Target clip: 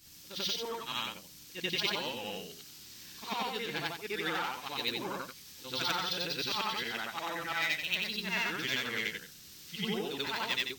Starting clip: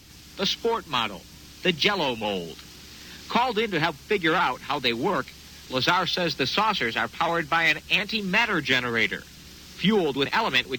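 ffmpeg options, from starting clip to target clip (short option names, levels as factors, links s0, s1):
-af "afftfilt=real='re':imag='-im':win_size=8192:overlap=0.75,crystalizer=i=3:c=0,volume=0.355"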